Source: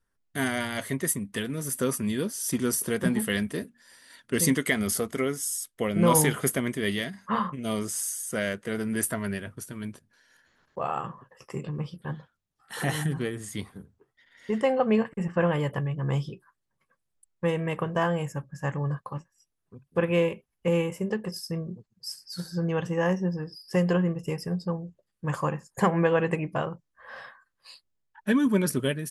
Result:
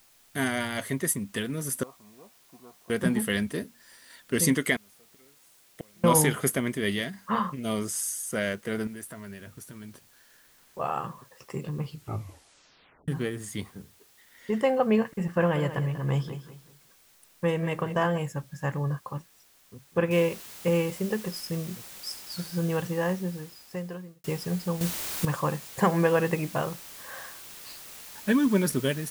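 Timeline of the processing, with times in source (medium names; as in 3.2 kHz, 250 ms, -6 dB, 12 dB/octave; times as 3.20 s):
1.83–2.90 s: cascade formant filter a
4.76–6.04 s: inverted gate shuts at -27 dBFS, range -34 dB
8.87–10.79 s: compression 3:1, threshold -41 dBFS
11.80 s: tape stop 1.28 s
15.23–18.18 s: feedback delay 190 ms, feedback 30%, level -12 dB
20.11 s: noise floor step -60 dB -45 dB
22.66–24.24 s: fade out
24.81–25.25 s: gain +11 dB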